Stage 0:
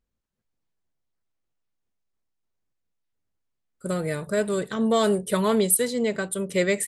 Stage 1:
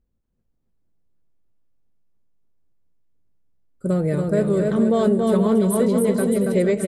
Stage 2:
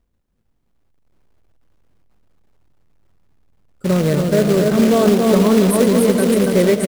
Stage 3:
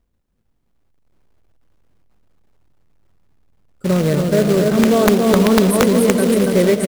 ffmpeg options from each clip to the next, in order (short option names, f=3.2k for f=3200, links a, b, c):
-af "tiltshelf=f=840:g=8.5,aecho=1:1:280|476|613.2|709.2|776.5:0.631|0.398|0.251|0.158|0.1,acompressor=threshold=-15dB:ratio=6,volume=1dB"
-filter_complex "[0:a]acrossover=split=1300[a][b];[a]acrusher=bits=3:mode=log:mix=0:aa=0.000001[c];[c][b]amix=inputs=2:normalize=0,asplit=7[d][e][f][g][h][i][j];[e]adelay=110,afreqshift=40,volume=-15dB[k];[f]adelay=220,afreqshift=80,volume=-19.6dB[l];[g]adelay=330,afreqshift=120,volume=-24.2dB[m];[h]adelay=440,afreqshift=160,volume=-28.7dB[n];[i]adelay=550,afreqshift=200,volume=-33.3dB[o];[j]adelay=660,afreqshift=240,volume=-37.9dB[p];[d][k][l][m][n][o][p]amix=inputs=7:normalize=0,volume=4.5dB"
-af "aeval=exprs='(mod(1.41*val(0)+1,2)-1)/1.41':c=same"